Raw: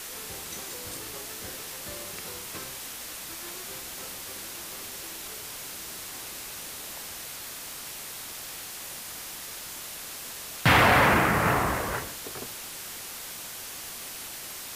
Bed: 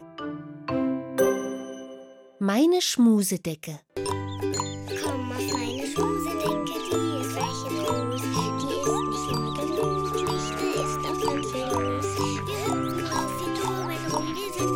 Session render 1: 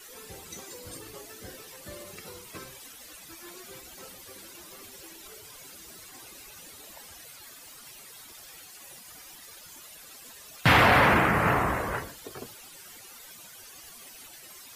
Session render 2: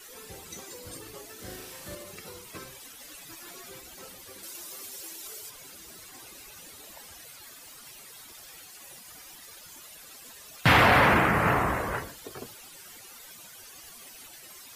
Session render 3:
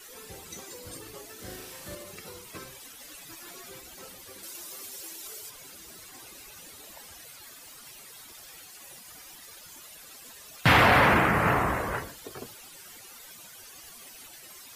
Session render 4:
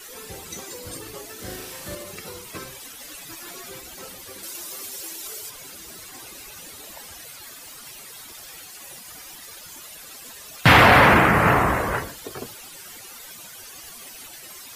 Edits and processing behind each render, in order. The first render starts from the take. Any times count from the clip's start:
broadband denoise 14 dB, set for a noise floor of −40 dBFS
0:01.35–0:01.95: flutter between parallel walls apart 6.5 metres, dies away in 0.63 s; 0:02.98–0:03.69: comb filter 7.1 ms, depth 57%; 0:04.43–0:05.50: bass and treble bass −7 dB, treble +7 dB
no processing that can be heard
level +6.5 dB

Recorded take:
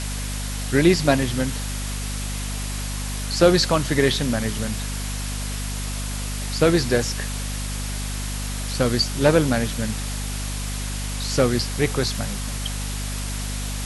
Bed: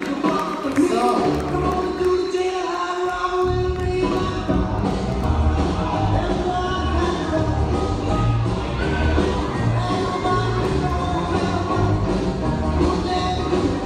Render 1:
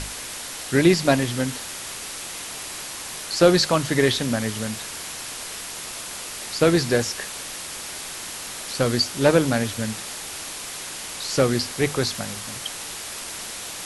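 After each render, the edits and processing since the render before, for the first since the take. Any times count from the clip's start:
mains-hum notches 50/100/150/200/250 Hz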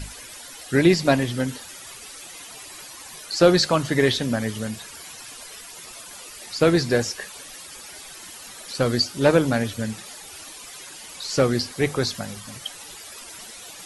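broadband denoise 13 dB, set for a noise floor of −35 dBFS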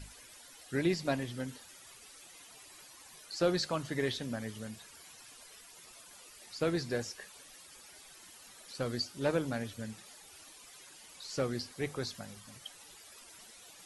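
level −14 dB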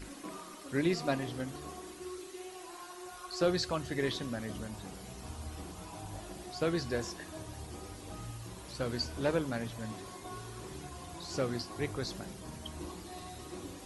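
mix in bed −25 dB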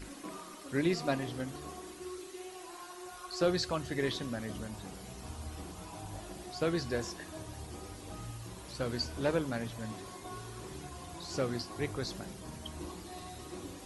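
no processing that can be heard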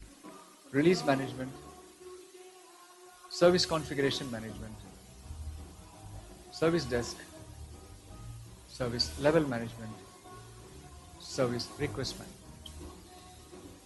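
multiband upward and downward expander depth 70%

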